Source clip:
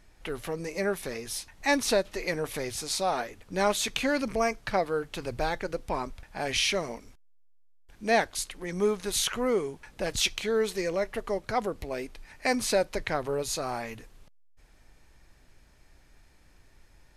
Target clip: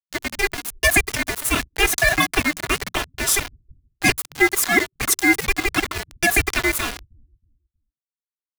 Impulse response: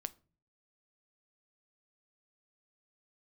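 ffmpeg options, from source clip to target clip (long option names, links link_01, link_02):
-filter_complex "[0:a]asetrate=88200,aresample=44100,adynamicequalizer=threshold=0.00355:dfrequency=2300:dqfactor=4.6:tfrequency=2300:tqfactor=4.6:attack=5:release=100:ratio=0.375:range=3:mode=boostabove:tftype=bell,asplit=2[link_01][link_02];[1:a]atrim=start_sample=2205,atrim=end_sample=3087[link_03];[link_02][link_03]afir=irnorm=-1:irlink=0,volume=6dB[link_04];[link_01][link_04]amix=inputs=2:normalize=0,aeval=exprs='val(0)*sin(2*PI*1200*n/s)':channel_layout=same,equalizer=frequency=160:width_type=o:width=0.67:gain=7,equalizer=frequency=1600:width_type=o:width=0.67:gain=6,equalizer=frequency=4000:width_type=o:width=0.67:gain=-5,equalizer=frequency=10000:width_type=o:width=0.67:gain=6,afftfilt=real='re*gte(hypot(re,im),0.00891)':imag='im*gte(hypot(re,im),0.00891)':win_size=1024:overlap=0.75,aecho=1:1:2.9:0.72,asplit=2[link_05][link_06];[link_06]adelay=318,lowpass=frequency=4200:poles=1,volume=-15dB,asplit=2[link_07][link_08];[link_08]adelay=318,lowpass=frequency=4200:poles=1,volume=0.27,asplit=2[link_09][link_10];[link_10]adelay=318,lowpass=frequency=4200:poles=1,volume=0.27[link_11];[link_05][link_07][link_09][link_11]amix=inputs=4:normalize=0,acrossover=split=150[link_12][link_13];[link_13]aeval=exprs='val(0)*gte(abs(val(0)),0.0841)':channel_layout=same[link_14];[link_12][link_14]amix=inputs=2:normalize=0"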